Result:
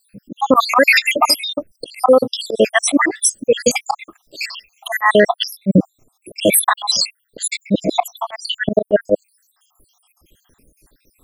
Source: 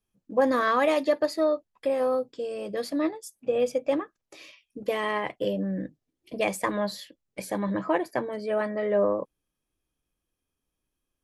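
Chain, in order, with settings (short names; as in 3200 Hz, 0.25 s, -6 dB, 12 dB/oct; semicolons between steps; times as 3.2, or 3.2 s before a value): random spectral dropouts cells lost 80%; high shelf 4400 Hz +5.5 dB; auto swell 0.178 s; maximiser +31.5 dB; gain -1 dB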